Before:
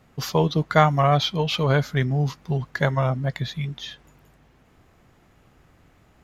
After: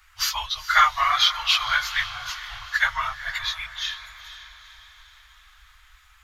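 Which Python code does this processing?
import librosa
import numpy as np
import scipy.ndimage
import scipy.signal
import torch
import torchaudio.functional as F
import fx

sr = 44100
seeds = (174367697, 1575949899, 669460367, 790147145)

p1 = fx.phase_scramble(x, sr, seeds[0], window_ms=50)
p2 = scipy.signal.sosfilt(scipy.signal.cheby2(4, 70, [160.0, 410.0], 'bandstop', fs=sr, output='sos'), p1)
p3 = p2 + fx.echo_diffused(p2, sr, ms=469, feedback_pct=50, wet_db=-13.0, dry=0)
y = p3 * librosa.db_to_amplitude(7.5)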